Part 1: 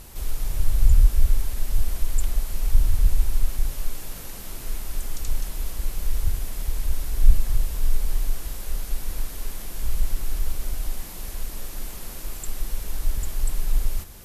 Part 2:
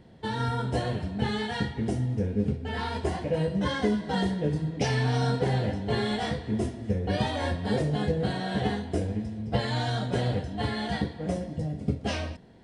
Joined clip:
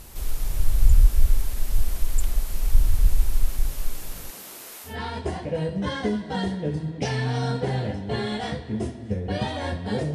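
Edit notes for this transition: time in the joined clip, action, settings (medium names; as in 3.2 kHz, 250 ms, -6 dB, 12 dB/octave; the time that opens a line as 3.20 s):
part 1
4.29–4.97 s: high-pass 190 Hz -> 640 Hz
4.90 s: go over to part 2 from 2.69 s, crossfade 0.14 s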